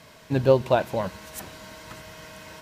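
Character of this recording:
background noise floor −51 dBFS
spectral slope −6.0 dB per octave

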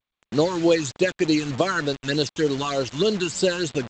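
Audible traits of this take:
phaser sweep stages 8, 3.3 Hz, lowest notch 550–2,100 Hz
a quantiser's noise floor 6 bits, dither none
G.722

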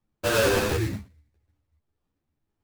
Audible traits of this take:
phaser sweep stages 4, 0.97 Hz, lowest notch 710–3,000 Hz
aliases and images of a low sample rate 2,100 Hz, jitter 20%
a shimmering, thickened sound

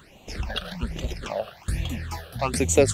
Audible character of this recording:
phaser sweep stages 8, 1.2 Hz, lowest notch 270–1,600 Hz

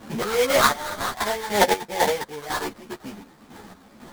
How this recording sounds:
chopped level 2 Hz, depth 60%, duty 45%
phaser sweep stages 6, 2.6 Hz, lowest notch 610–2,600 Hz
aliases and images of a low sample rate 2,700 Hz, jitter 20%
a shimmering, thickened sound

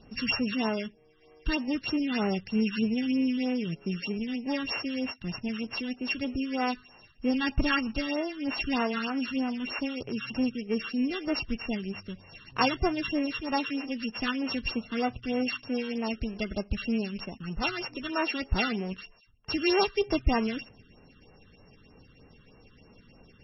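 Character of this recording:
a buzz of ramps at a fixed pitch in blocks of 16 samples
phaser sweep stages 8, 3.2 Hz, lowest notch 670–4,600 Hz
MP3

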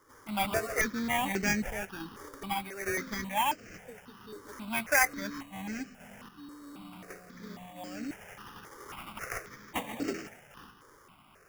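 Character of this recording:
aliases and images of a low sample rate 4,100 Hz, jitter 0%
sample-and-hold tremolo
notches that jump at a steady rate 3.7 Hz 710–3,500 Hz

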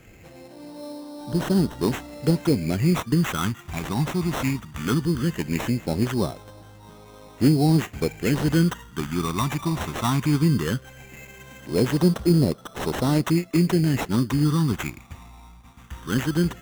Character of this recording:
phaser sweep stages 8, 0.18 Hz, lowest notch 490–2,100 Hz
aliases and images of a low sample rate 4,700 Hz, jitter 0%

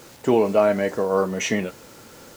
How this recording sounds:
a quantiser's noise floor 8 bits, dither none

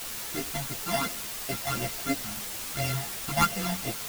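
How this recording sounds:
a buzz of ramps at a fixed pitch in blocks of 64 samples
phaser sweep stages 12, 2.9 Hz, lowest notch 400–1,400 Hz
a quantiser's noise floor 6 bits, dither triangular
a shimmering, thickened sound

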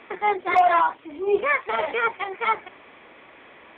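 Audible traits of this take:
background noise floor −49 dBFS
spectral slope 0.0 dB per octave

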